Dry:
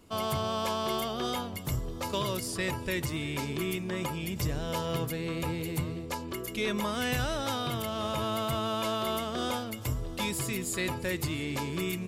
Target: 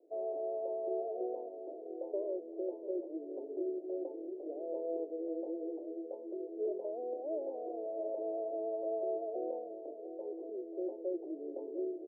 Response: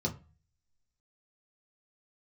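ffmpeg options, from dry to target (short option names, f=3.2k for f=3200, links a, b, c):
-filter_complex "[0:a]asuperpass=centerf=470:order=12:qfactor=1.2,asplit=2[a][b];[b]adelay=699.7,volume=-12dB,highshelf=f=4k:g=-15.7[c];[a][c]amix=inputs=2:normalize=0,volume=-1.5dB"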